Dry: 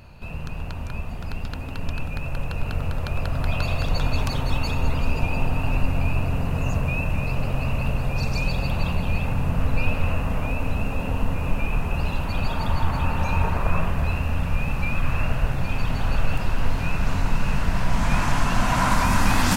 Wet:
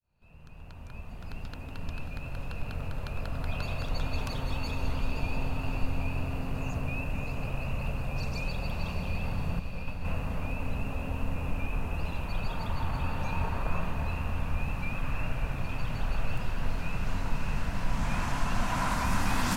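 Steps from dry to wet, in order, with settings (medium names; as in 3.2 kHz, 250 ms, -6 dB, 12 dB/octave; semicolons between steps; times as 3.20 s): fade-in on the opening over 1.38 s; 9.59–10.05 s: expander -10 dBFS; echo that smears into a reverb 587 ms, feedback 55%, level -8 dB; trim -9 dB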